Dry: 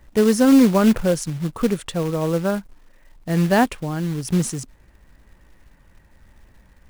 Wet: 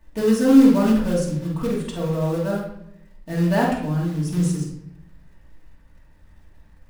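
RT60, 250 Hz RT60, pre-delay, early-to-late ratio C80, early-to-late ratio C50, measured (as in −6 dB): 0.75 s, 1.0 s, 3 ms, 7.0 dB, 2.0 dB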